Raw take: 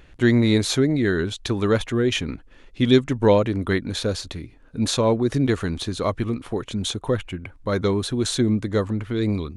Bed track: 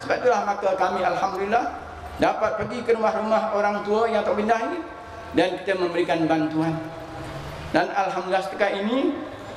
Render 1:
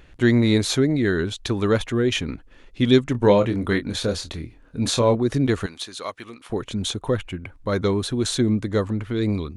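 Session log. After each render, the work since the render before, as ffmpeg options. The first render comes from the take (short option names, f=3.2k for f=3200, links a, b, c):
-filter_complex "[0:a]asettb=1/sr,asplit=3[a][b][c];[a]atrim=end=3.124[d];[b]atrim=start=3.12:end=5.15,asetpts=PTS-STARTPTS,afade=t=in:d=0.004:c=qsin,afade=t=out:st=2.026:d=0.004:c=qsin,asplit=2[e][f];[f]adelay=25,volume=-7.5dB[g];[e][g]amix=inputs=2:normalize=0,atrim=end_sample=89523[h];[c]atrim=start=5.146[i];[d][h]acrossfade=d=0.004:c1=hsin:c2=qsin[j];[j][i]acrossfade=d=0.004:c1=qsin:c2=hsin,asettb=1/sr,asplit=3[k][l][m];[k]atrim=end=5.664[n];[l]atrim=start=5.66:end=6.5,asetpts=PTS-STARTPTS,afade=t=in:d=0.004:c=qsin,afade=t=out:st=0.836:d=0.004:c=qsin,highpass=f=1.5k:p=1[o];[m]atrim=start=6.496[p];[n][o]acrossfade=d=0.004:c1=hsin:c2=qsin[q];[q][p]acrossfade=d=0.004:c1=qsin:c2=hsin"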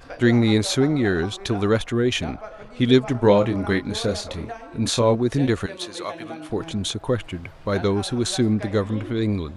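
-filter_complex "[1:a]volume=-14.5dB[a];[0:a][a]amix=inputs=2:normalize=0"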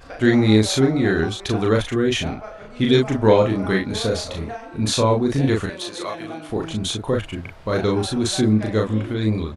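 -filter_complex "[0:a]asplit=2[a][b];[b]adelay=37,volume=-2.5dB[c];[a][c]amix=inputs=2:normalize=0"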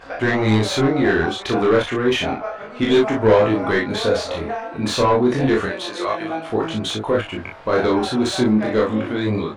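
-filter_complex "[0:a]asplit=2[a][b];[b]highpass=f=720:p=1,volume=20dB,asoftclip=type=tanh:threshold=-2dB[c];[a][c]amix=inputs=2:normalize=0,lowpass=f=1.4k:p=1,volume=-6dB,flanger=delay=18:depth=6.3:speed=0.3"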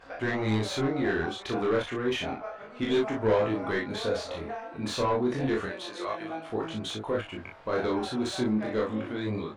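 -af "volume=-10.5dB"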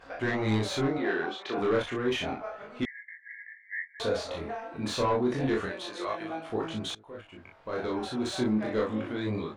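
-filter_complex "[0:a]asettb=1/sr,asplit=3[a][b][c];[a]atrim=end=0.984[d];[b]atrim=start=0.98:end=1.58,asetpts=PTS-STARTPTS,afade=t=in:d=0.004:c=qsin,afade=t=out:st=0.596:d=0.004:c=qsin,highpass=300,lowpass=4.4k[e];[c]atrim=start=1.576[f];[d][e]acrossfade=d=0.004:c1=hsin:c2=qsin[g];[g][f]acrossfade=d=0.004:c1=qsin:c2=hsin,asettb=1/sr,asplit=3[h][i][j];[h]atrim=end=2.854[k];[i]atrim=start=2.85:end=4,asetpts=PTS-STARTPTS,afade=t=in:d=0.004:c=qsin,afade=t=out:st=1.146:d=0.004:c=qsin,asuperpass=centerf=1900:order=20:qfactor=3.3[l];[j]atrim=start=3.996[m];[k][l]acrossfade=d=0.004:c1=hsin:c2=qsin[n];[n][m]acrossfade=d=0.004:c1=qsin:c2=hsin,asplit=2[o][p];[o]atrim=end=6.95,asetpts=PTS-STARTPTS,afade=t=out:st=6.946:d=0.004:c=hsin:silence=0.0707946[q];[p]atrim=start=6.95,asetpts=PTS-STARTPTS,afade=t=in:d=1.49:silence=0.0707946[r];[q][r]concat=n=2:v=0:a=1"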